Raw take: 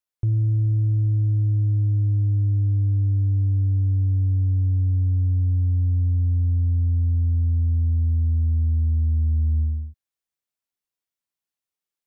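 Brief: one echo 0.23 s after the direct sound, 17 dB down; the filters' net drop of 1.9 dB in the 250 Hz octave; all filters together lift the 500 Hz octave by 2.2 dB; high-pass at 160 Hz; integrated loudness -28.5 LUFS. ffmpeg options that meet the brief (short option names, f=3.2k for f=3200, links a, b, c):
-af "highpass=160,equalizer=f=250:t=o:g=-3,equalizer=f=500:t=o:g=6,aecho=1:1:230:0.141,volume=2.5dB"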